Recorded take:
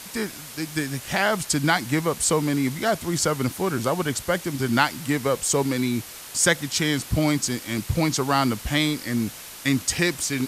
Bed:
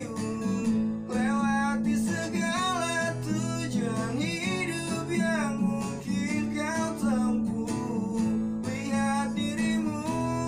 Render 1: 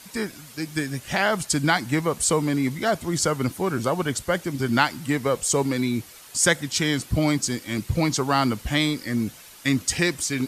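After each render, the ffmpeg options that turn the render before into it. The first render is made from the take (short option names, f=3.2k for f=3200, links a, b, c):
-af "afftdn=nr=8:nf=-40"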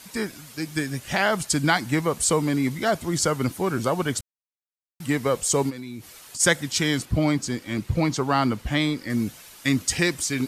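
-filter_complex "[0:a]asplit=3[a][b][c];[a]afade=t=out:st=5.69:d=0.02[d];[b]acompressor=threshold=-32dB:ratio=10:attack=3.2:release=140:knee=1:detection=peak,afade=t=in:st=5.69:d=0.02,afade=t=out:st=6.39:d=0.02[e];[c]afade=t=in:st=6.39:d=0.02[f];[d][e][f]amix=inputs=3:normalize=0,asettb=1/sr,asplit=3[g][h][i];[g]atrim=end=7.054[j];[h]atrim=start=7.05:end=9.1,asetpts=PTS-STARTPTS,afade=t=in:d=0.004:c=qsin,afade=t=out:st=2.046:d=0.004:c=qsin,highshelf=f=4.4k:g=-9[k];[i]atrim=start=9.096[l];[j][k]acrossfade=d=0.004:c1=hsin:c2=qsin[m];[m][l]acrossfade=d=0.004:c1=qsin:c2=hsin,asplit=3[n][o][p];[n]atrim=end=4.21,asetpts=PTS-STARTPTS,afade=t=out:st=4.206:d=0.004:c=hsin[q];[o]atrim=start=4.21:end=5,asetpts=PTS-STARTPTS,volume=0[r];[p]atrim=start=5,asetpts=PTS-STARTPTS,afade=t=in:d=0.004:c=hsin[s];[q][r][s]concat=n=3:v=0:a=1"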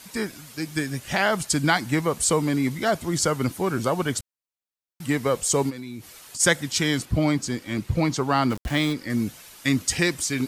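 -filter_complex "[0:a]asplit=3[a][b][c];[a]afade=t=out:st=8.49:d=0.02[d];[b]aeval=exprs='val(0)*gte(abs(val(0)),0.0251)':c=same,afade=t=in:st=8.49:d=0.02,afade=t=out:st=8.92:d=0.02[e];[c]afade=t=in:st=8.92:d=0.02[f];[d][e][f]amix=inputs=3:normalize=0"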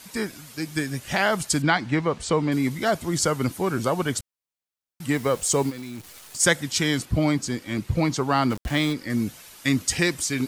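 -filter_complex "[0:a]asettb=1/sr,asplit=3[a][b][c];[a]atrim=end=1.624[d];[b]atrim=start=1.62:end=2.52,asetpts=PTS-STARTPTS,afade=t=in:d=0.004:c=qsin,afade=t=out:st=0.896:d=0.004:c=qsin,lowpass=4k[e];[c]atrim=start=2.516[f];[d][e]acrossfade=d=0.004:c1=hsin:c2=qsin[g];[g][f]acrossfade=d=0.004:c1=qsin:c2=hsin,asettb=1/sr,asplit=3[h][i][j];[h]atrim=end=5.154[k];[i]atrim=start=5.15:end=6.41,asetpts=PTS-STARTPTS,afade=t=in:d=0.004:c=qsin,afade=t=out:st=1.256:d=0.004:c=qsin,acrusher=bits=8:dc=4:mix=0:aa=0.000001[l];[j]atrim=start=6.406[m];[k][l]acrossfade=d=0.004:c1=hsin:c2=qsin[n];[n][m]acrossfade=d=0.004:c1=qsin:c2=hsin"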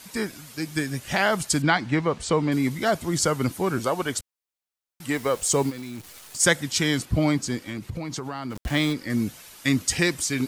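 -filter_complex "[0:a]asettb=1/sr,asplit=3[a][b][c];[a]atrim=end=3.794[d];[b]atrim=start=3.79:end=5.42,asetpts=PTS-STARTPTS,afade=t=in:d=0.004:c=qsin,afade=t=out:st=1.626:d=0.004:c=qsin,equalizer=f=150:t=o:w=1.6:g=-7[e];[c]atrim=start=5.416[f];[d][e]acrossfade=d=0.004:c1=hsin:c2=qsin[g];[g][f]acrossfade=d=0.004:c1=qsin:c2=hsin,asettb=1/sr,asplit=3[h][i][j];[h]atrim=end=7.644[k];[i]atrim=start=7.64:end=8.56,asetpts=PTS-STARTPTS,afade=t=in:d=0.004:c=qsin,afade=t=out:st=0.916:d=0.004:c=qsin,acompressor=threshold=-27dB:ratio=12:attack=3.2:release=140:knee=1:detection=peak[l];[j]atrim=start=8.556[m];[k][l]acrossfade=d=0.004:c1=hsin:c2=qsin[n];[n][m]acrossfade=d=0.004:c1=qsin:c2=hsin"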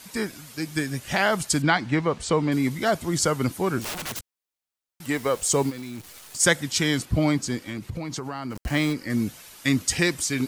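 -filter_complex "[0:a]asettb=1/sr,asplit=3[a][b][c];[a]atrim=end=3.814[d];[b]atrim=start=3.81:end=5.07,asetpts=PTS-STARTPTS,afade=t=in:d=0.004:c=qsin,afade=t=out:st=1.256:d=0.004:c=qsin,aeval=exprs='(mod(21.1*val(0)+1,2)-1)/21.1':c=same[e];[c]atrim=start=5.066[f];[d][e]acrossfade=d=0.004:c1=hsin:c2=qsin[g];[g][f]acrossfade=d=0.004:c1=qsin:c2=hsin,asettb=1/sr,asplit=3[h][i][j];[h]atrim=end=8.184[k];[i]atrim=start=8.18:end=9.11,asetpts=PTS-STARTPTS,afade=t=in:d=0.004:c=qsin,afade=t=out:st=0.926:d=0.004:c=qsin,bandreject=f=3.5k:w=6.4[l];[j]atrim=start=9.106[m];[k][l]acrossfade=d=0.004:c1=hsin:c2=qsin[n];[n][m]acrossfade=d=0.004:c1=qsin:c2=hsin"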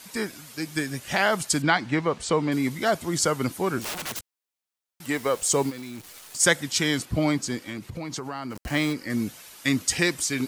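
-af "lowshelf=f=140:g=-7.5"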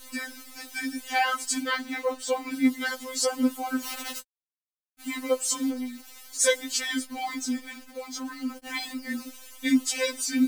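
-af "acrusher=bits=8:dc=4:mix=0:aa=0.000001,afftfilt=real='re*3.46*eq(mod(b,12),0)':imag='im*3.46*eq(mod(b,12),0)':win_size=2048:overlap=0.75"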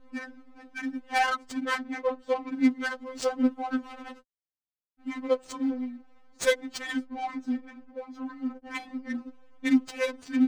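-af "adynamicsmooth=sensitivity=2.5:basefreq=740"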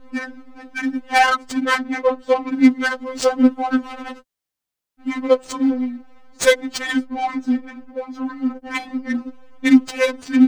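-af "volume=10.5dB,alimiter=limit=-2dB:level=0:latency=1"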